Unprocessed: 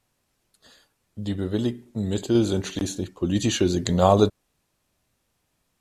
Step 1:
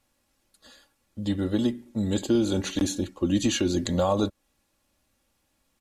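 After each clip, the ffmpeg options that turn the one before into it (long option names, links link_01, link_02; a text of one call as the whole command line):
ffmpeg -i in.wav -af "aecho=1:1:3.6:0.52,alimiter=limit=-13.5dB:level=0:latency=1:release=241" out.wav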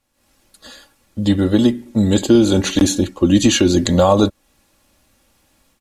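ffmpeg -i in.wav -af "dynaudnorm=framelen=130:gausssize=3:maxgain=13dB" out.wav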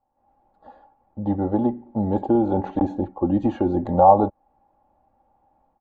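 ffmpeg -i in.wav -af "lowpass=frequency=810:width_type=q:width=9.4,volume=-9dB" out.wav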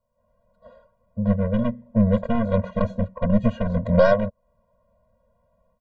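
ffmpeg -i in.wav -af "alimiter=limit=-10.5dB:level=0:latency=1:release=368,aeval=exprs='0.299*(cos(1*acos(clip(val(0)/0.299,-1,1)))-cos(1*PI/2))+0.075*(cos(2*acos(clip(val(0)/0.299,-1,1)))-cos(2*PI/2))+0.0119*(cos(7*acos(clip(val(0)/0.299,-1,1)))-cos(7*PI/2))':channel_layout=same,afftfilt=real='re*eq(mod(floor(b*sr/1024/230),2),0)':imag='im*eq(mod(floor(b*sr/1024/230),2),0)':win_size=1024:overlap=0.75,volume=7.5dB" out.wav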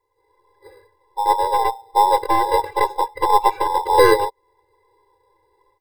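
ffmpeg -i in.wav -filter_complex "[0:a]afftfilt=real='real(if(between(b,1,1008),(2*floor((b-1)/48)+1)*48-b,b),0)':imag='imag(if(between(b,1,1008),(2*floor((b-1)/48)+1)*48-b,b),0)*if(between(b,1,1008),-1,1)':win_size=2048:overlap=0.75,acrossover=split=650[link_01][link_02];[link_01]acrusher=samples=10:mix=1:aa=0.000001[link_03];[link_03][link_02]amix=inputs=2:normalize=0,volume=3dB" out.wav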